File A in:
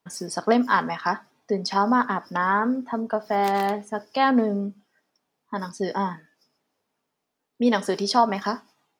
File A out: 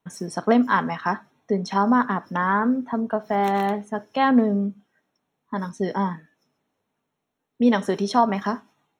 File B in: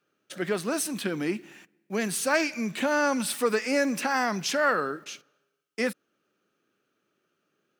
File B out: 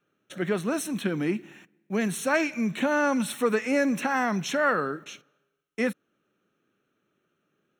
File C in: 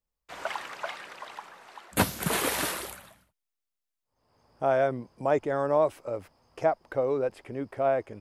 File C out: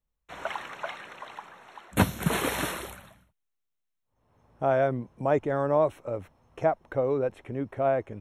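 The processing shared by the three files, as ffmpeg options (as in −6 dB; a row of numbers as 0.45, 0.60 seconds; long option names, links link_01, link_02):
-af "asuperstop=centerf=4800:order=8:qfactor=5.3,bass=frequency=250:gain=6,treble=frequency=4000:gain=-5"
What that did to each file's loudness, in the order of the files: +1.0, +0.5, +0.5 LU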